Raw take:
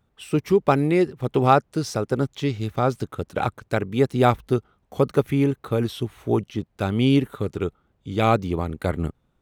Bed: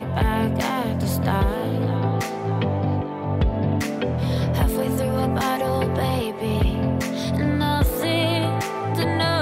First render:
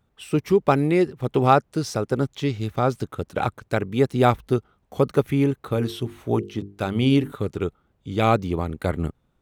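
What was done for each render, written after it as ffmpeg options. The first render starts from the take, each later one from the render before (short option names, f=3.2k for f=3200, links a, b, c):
-filter_complex "[0:a]asettb=1/sr,asplit=3[a][b][c];[a]atrim=end=5.734[d];[b]atrim=start=5.73:end=7.32,asetpts=PTS-STARTPTS,afade=t=in:d=0.004:c=qsin,afade=t=out:st=1.586:d=0.004:c=qsin,bandreject=f=50:t=h:w=6,bandreject=f=100:t=h:w=6,bandreject=f=150:t=h:w=6,bandreject=f=200:t=h:w=6,bandreject=f=250:t=h:w=6,bandreject=f=300:t=h:w=6,bandreject=f=350:t=h:w=6,bandreject=f=400:t=h:w=6,bandreject=f=450:t=h:w=6[e];[c]atrim=start=7.316[f];[d][e]acrossfade=d=0.004:c1=hsin:c2=qsin[g];[g][f]acrossfade=d=0.004:c1=qsin:c2=hsin"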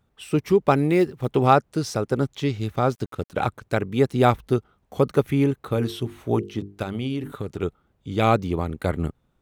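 -filter_complex "[0:a]asettb=1/sr,asplit=3[a][b][c];[a]atrim=end=0.904[d];[b]atrim=start=0.9:end=1.33,asetpts=PTS-STARTPTS,afade=t=in:d=0.004:c=qsin,afade=t=out:st=0.426:d=0.004:c=qsin,acrusher=bits=9:mode=log:mix=0:aa=0.000001[e];[c]atrim=start=1.326[f];[d][e]acrossfade=d=0.004:c1=hsin:c2=qsin[g];[g][f]acrossfade=d=0.004:c1=qsin:c2=hsin,asettb=1/sr,asplit=3[h][i][j];[h]atrim=end=2.814[k];[i]atrim=start=2.81:end=3.32,asetpts=PTS-STARTPTS,afade=t=in:d=0.004:c=qsin,afade=t=out:st=0.506:d=0.004:c=qsin,aeval=exprs='sgn(val(0))*max(abs(val(0))-0.00355,0)':c=same[l];[j]atrim=start=3.316[m];[k][l]acrossfade=d=0.004:c1=hsin:c2=qsin[n];[n][m]acrossfade=d=0.004:c1=qsin:c2=hsin,asettb=1/sr,asplit=3[o][p][q];[o]atrim=end=6.824[r];[p]atrim=start=6.82:end=7.63,asetpts=PTS-STARTPTS,afade=t=in:d=0.004:c=qsin,afade=t=out:st=0.806:d=0.004:c=qsin,acompressor=threshold=-25dB:ratio=4:attack=3.2:release=140:knee=1:detection=peak[s];[q]atrim=start=7.626[t];[r][s]acrossfade=d=0.004:c1=hsin:c2=qsin[u];[u][t]acrossfade=d=0.004:c1=qsin:c2=hsin"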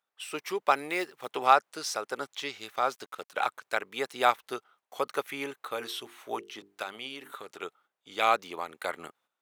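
-af "agate=range=-8dB:threshold=-48dB:ratio=16:detection=peak,highpass=890"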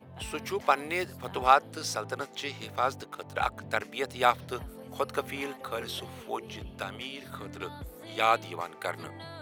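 -filter_complex "[1:a]volume=-23dB[a];[0:a][a]amix=inputs=2:normalize=0"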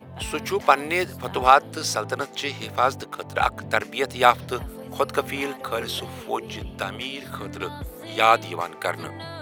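-af "volume=7.5dB,alimiter=limit=-1dB:level=0:latency=1"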